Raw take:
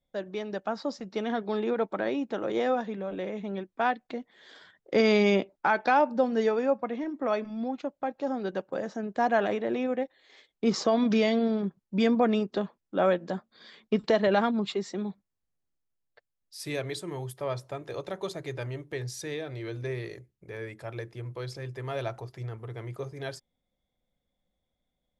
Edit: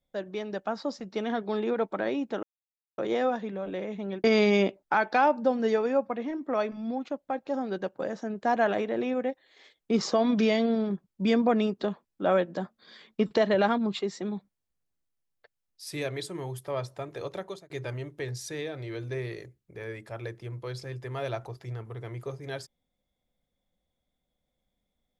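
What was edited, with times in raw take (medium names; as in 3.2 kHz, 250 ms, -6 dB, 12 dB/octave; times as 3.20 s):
2.43 s: insert silence 0.55 s
3.69–4.97 s: delete
18.10–18.43 s: fade out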